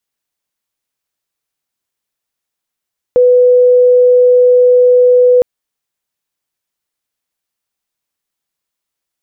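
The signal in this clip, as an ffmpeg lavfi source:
ffmpeg -f lavfi -i "sine=frequency=496:duration=2.26:sample_rate=44100,volume=14.06dB" out.wav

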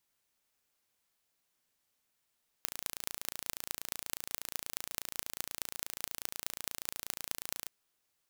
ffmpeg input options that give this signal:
ffmpeg -f lavfi -i "aevalsrc='0.501*eq(mod(n,1558),0)*(0.5+0.5*eq(mod(n,9348),0))':duration=5.05:sample_rate=44100" out.wav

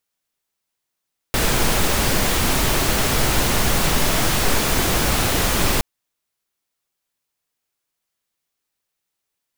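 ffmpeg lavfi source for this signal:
ffmpeg -f lavfi -i "anoisesrc=color=pink:amplitude=0.646:duration=4.47:sample_rate=44100:seed=1" out.wav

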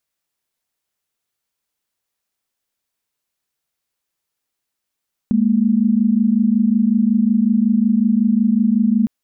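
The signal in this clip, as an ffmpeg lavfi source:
ffmpeg -f lavfi -i "aevalsrc='0.178*(sin(2*PI*207.65*t)+sin(2*PI*233.08*t))':duration=3.76:sample_rate=44100" out.wav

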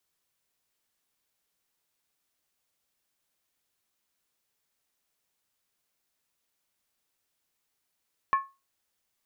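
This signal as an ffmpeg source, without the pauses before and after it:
ffmpeg -f lavfi -i "aevalsrc='0.141*pow(10,-3*t/0.26)*sin(2*PI*1090*t)+0.0398*pow(10,-3*t/0.206)*sin(2*PI*1737.5*t)+0.0112*pow(10,-3*t/0.178)*sin(2*PI*2328.2*t)+0.00316*pow(10,-3*t/0.172)*sin(2*PI*2502.6*t)+0.000891*pow(10,-3*t/0.16)*sin(2*PI*2891.8*t)':duration=0.63:sample_rate=44100" out.wav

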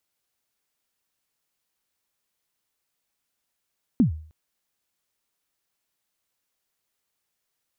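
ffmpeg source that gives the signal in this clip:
ffmpeg -f lavfi -i "aevalsrc='0.266*pow(10,-3*t/0.47)*sin(2*PI*(280*0.114/log(78/280)*(exp(log(78/280)*min(t,0.114)/0.114)-1)+78*max(t-0.114,0)))':duration=0.31:sample_rate=44100" out.wav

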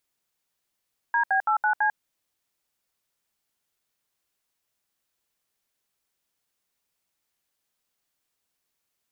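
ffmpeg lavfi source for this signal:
ffmpeg -f lavfi -i "aevalsrc='0.0794*clip(min(mod(t,0.166),0.096-mod(t,0.166))/0.002,0,1)*(eq(floor(t/0.166),0)*(sin(2*PI*941*mod(t,0.166))+sin(2*PI*1633*mod(t,0.166)))+eq(floor(t/0.166),1)*(sin(2*PI*770*mod(t,0.166))+sin(2*PI*1633*mod(t,0.166)))+eq(floor(t/0.166),2)*(sin(2*PI*852*mod(t,0.166))+sin(2*PI*1336*mod(t,0.166)))+eq(floor(t/0.166),3)*(sin(2*PI*852*mod(t,0.166))+sin(2*PI*1477*mod(t,0.166)))+eq(floor(t/0.166),4)*(sin(2*PI*852*mod(t,0.166))+sin(2*PI*1633*mod(t,0.166))))':duration=0.83:sample_rate=44100" out.wav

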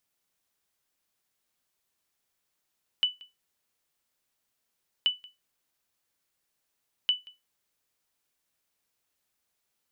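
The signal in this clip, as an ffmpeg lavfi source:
ffmpeg -f lavfi -i "aevalsrc='0.158*(sin(2*PI*2980*mod(t,2.03))*exp(-6.91*mod(t,2.03)/0.2)+0.0668*sin(2*PI*2980*max(mod(t,2.03)-0.18,0))*exp(-6.91*max(mod(t,2.03)-0.18,0)/0.2))':duration=6.09:sample_rate=44100" out.wav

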